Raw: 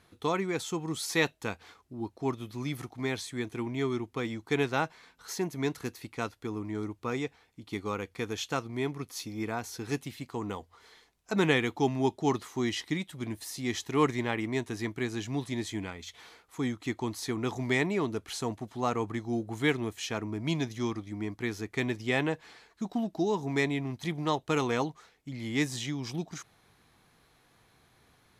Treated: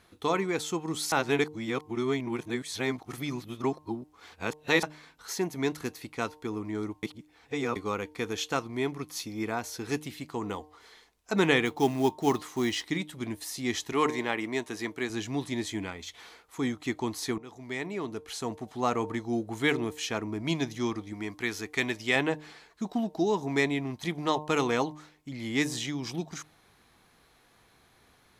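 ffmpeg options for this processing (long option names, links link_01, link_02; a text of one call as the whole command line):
ffmpeg -i in.wav -filter_complex "[0:a]asettb=1/sr,asplit=3[link_01][link_02][link_03];[link_01]atrim=end=11.654[link_04];[link_02]atrim=start=11.65:end=12.86,asetpts=PTS-STARTPTS,afade=type=in:duration=0.004:curve=qsin,afade=type=out:start_time=1.206:duration=0.004:curve=qsin,acrusher=bits=6:mode=log:mix=0:aa=0.000001[link_05];[link_03]atrim=start=12.856[link_06];[link_04][link_05]acrossfade=duration=0.004:curve1=hsin:curve2=qsin[link_07];[link_07][link_06]acrossfade=duration=0.004:curve1=qsin:curve2=hsin,asettb=1/sr,asplit=3[link_08][link_09][link_10];[link_08]atrim=end=13.924[link_11];[link_09]atrim=start=13.92:end=15.1,asetpts=PTS-STARTPTS,afade=type=in:duration=0.004:curve=qsin,afade=type=out:start_time=1.176:duration=0.004:curve=qsin,highpass=frequency=270:poles=1[link_12];[link_10]atrim=start=15.096[link_13];[link_11][link_12]acrossfade=duration=0.004:curve1=hsin:curve2=qsin[link_14];[link_14][link_13]acrossfade=duration=0.004:curve1=qsin:curve2=hsin,asettb=1/sr,asplit=3[link_15][link_16][link_17];[link_15]atrim=end=21.134[link_18];[link_16]atrim=start=21.13:end=22.16,asetpts=PTS-STARTPTS,afade=type=in:duration=0.004:curve=qsin,afade=type=out:start_time=1.026:duration=0.004:curve=qsin,tiltshelf=frequency=860:gain=-4[link_19];[link_17]atrim=start=22.156[link_20];[link_18][link_19]acrossfade=duration=0.004:curve1=hsin:curve2=qsin[link_21];[link_21][link_20]acrossfade=duration=0.004:curve1=qsin:curve2=hsin,asplit=6[link_22][link_23][link_24][link_25][link_26][link_27];[link_22]atrim=end=1.122[link_28];[link_23]atrim=start=1.118:end=4.832,asetpts=PTS-STARTPTS,areverse[link_29];[link_24]atrim=start=4.828:end=7.032[link_30];[link_25]atrim=start=7.028:end=7.762,asetpts=PTS-STARTPTS,areverse[link_31];[link_26]atrim=start=7.758:end=17.38,asetpts=PTS-STARTPTS,afade=type=out:start_time=9.618:duration=0.004:curve=hsin:silence=0.1[link_32];[link_27]atrim=start=17.38,asetpts=PTS-STARTPTS,afade=type=in:duration=1.47:silence=0.1[link_33];[link_28][link_29]acrossfade=duration=0.004:curve1=hsin:curve2=hsin[link_34];[link_34][link_30]acrossfade=duration=0.004:curve1=hsin:curve2=hsin[link_35];[link_35][link_31]acrossfade=duration=0.004:curve1=hsin:curve2=hsin[link_36];[link_32][link_33]concat=n=2:v=0:a=1[link_37];[link_36][link_37]acrossfade=duration=0.004:curve1=hsin:curve2=hsin,equalizer=frequency=120:width=1.2:gain=-4.5,bandreject=frequency=151.7:width_type=h:width=4,bandreject=frequency=303.4:width_type=h:width=4,bandreject=frequency=455.1:width_type=h:width=4,bandreject=frequency=606.8:width_type=h:width=4,bandreject=frequency=758.5:width_type=h:width=4,bandreject=frequency=910.2:width_type=h:width=4,bandreject=frequency=1061.9:width_type=h:width=4,volume=2.5dB" out.wav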